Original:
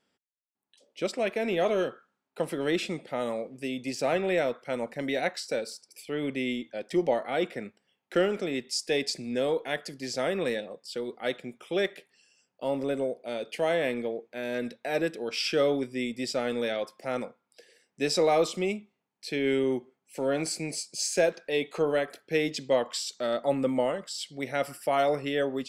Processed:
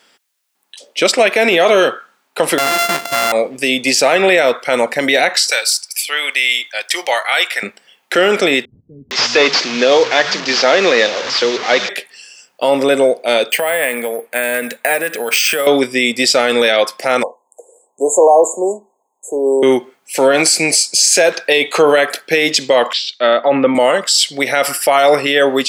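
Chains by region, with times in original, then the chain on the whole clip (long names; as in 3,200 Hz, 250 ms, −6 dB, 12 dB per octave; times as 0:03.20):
0:02.58–0:03.32: samples sorted by size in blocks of 64 samples + dynamic equaliser 1,500 Hz, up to +4 dB, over −40 dBFS, Q 0.7
0:05.50–0:07.63: high-pass filter 1,200 Hz + high-shelf EQ 10,000 Hz +6.5 dB
0:08.65–0:11.89: linear delta modulator 32 kbit/s, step −38 dBFS + multiband delay without the direct sound lows, highs 460 ms, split 160 Hz
0:13.50–0:15.67: downward compressor 12 to 1, threshold −32 dBFS + loudspeaker in its box 160–5,300 Hz, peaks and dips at 350 Hz −8 dB, 1,800 Hz +3 dB, 3,800 Hz −7 dB + bad sample-rate conversion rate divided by 4×, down filtered, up hold
0:17.23–0:19.63: linear-phase brick-wall band-stop 1,100–6,400 Hz + three-way crossover with the lows and the highs turned down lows −22 dB, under 350 Hz, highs −17 dB, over 7,300 Hz
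0:22.93–0:23.75: low-pass filter 3,300 Hz 24 dB per octave + multiband upward and downward expander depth 70%
whole clip: high-pass filter 1,000 Hz 6 dB per octave; boost into a limiter +27 dB; level −1 dB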